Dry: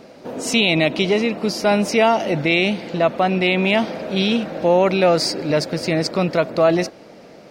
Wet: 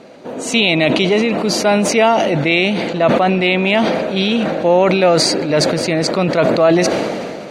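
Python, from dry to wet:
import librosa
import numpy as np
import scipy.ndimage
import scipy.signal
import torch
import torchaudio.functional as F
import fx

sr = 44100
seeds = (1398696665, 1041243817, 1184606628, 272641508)

y = scipy.signal.sosfilt(scipy.signal.butter(2, 10000.0, 'lowpass', fs=sr, output='sos'), x)
y = fx.low_shelf(y, sr, hz=74.0, db=-10.5)
y = fx.notch(y, sr, hz=5200.0, q=5.3)
y = fx.sustainer(y, sr, db_per_s=27.0)
y = y * librosa.db_to_amplitude(3.0)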